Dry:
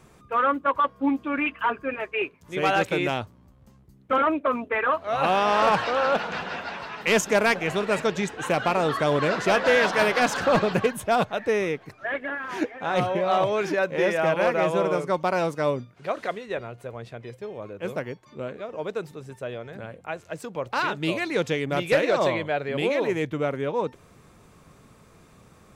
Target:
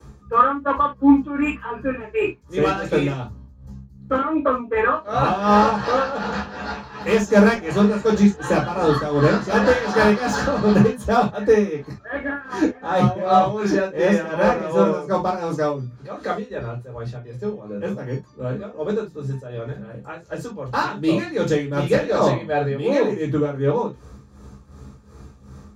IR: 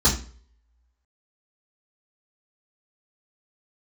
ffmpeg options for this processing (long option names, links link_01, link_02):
-filter_complex "[0:a]tremolo=f=2.7:d=0.74,acrossover=split=360|720|2900[link_01][link_02][link_03][link_04];[link_04]volume=35.5dB,asoftclip=hard,volume=-35.5dB[link_05];[link_01][link_02][link_03][link_05]amix=inputs=4:normalize=0[link_06];[1:a]atrim=start_sample=2205,atrim=end_sample=3528[link_07];[link_06][link_07]afir=irnorm=-1:irlink=0,volume=-11dB"